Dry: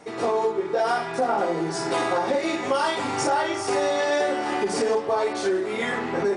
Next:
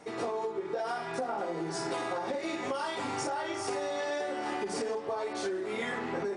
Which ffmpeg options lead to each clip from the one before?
-af "acompressor=threshold=-26dB:ratio=6,volume=-4.5dB"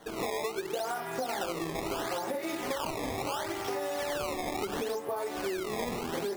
-af "acrusher=samples=17:mix=1:aa=0.000001:lfo=1:lforange=27.2:lforate=0.73"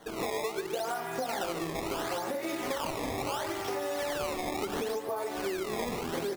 -af "aecho=1:1:146:0.266"

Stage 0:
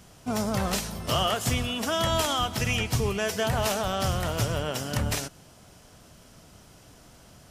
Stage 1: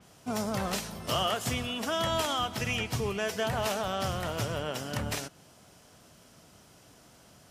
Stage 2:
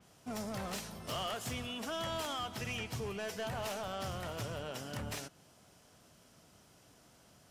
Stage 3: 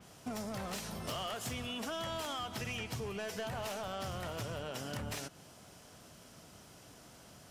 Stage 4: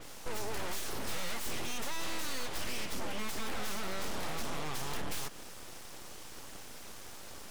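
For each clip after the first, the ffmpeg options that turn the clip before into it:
-af "highpass=f=130:p=1,adynamicequalizer=threshold=0.00708:dfrequency=4500:dqfactor=0.7:tfrequency=4500:tqfactor=0.7:attack=5:release=100:ratio=0.375:range=2:mode=cutabove:tftype=highshelf,volume=-3dB"
-af "asoftclip=type=tanh:threshold=-26.5dB,volume=-6dB"
-af "acompressor=threshold=-44dB:ratio=6,volume=6.5dB"
-af "aeval=exprs='abs(val(0))':c=same,aeval=exprs='(tanh(50.1*val(0)+0.8)-tanh(0.8))/50.1':c=same,volume=16.5dB"

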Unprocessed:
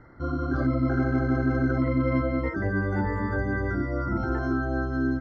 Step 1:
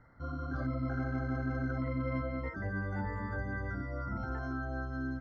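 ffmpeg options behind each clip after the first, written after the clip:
-af "equalizer=f=350:t=o:w=0.44:g=-12.5,volume=-8.5dB"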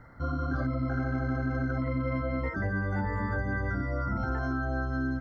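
-af "acompressor=threshold=-35dB:ratio=6,volume=9dB"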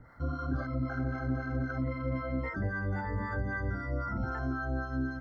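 -filter_complex "[0:a]acrossover=split=600[a][b];[a]aeval=exprs='val(0)*(1-0.7/2+0.7/2*cos(2*PI*3.8*n/s))':c=same[c];[b]aeval=exprs='val(0)*(1-0.7/2-0.7/2*cos(2*PI*3.8*n/s))':c=same[d];[c][d]amix=inputs=2:normalize=0"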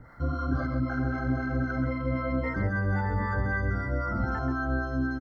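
-af "aecho=1:1:133:0.422,volume=4.5dB"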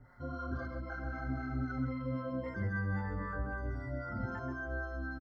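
-filter_complex "[0:a]asplit=2[a][b];[b]adelay=5,afreqshift=-0.5[c];[a][c]amix=inputs=2:normalize=1,volume=-6dB"

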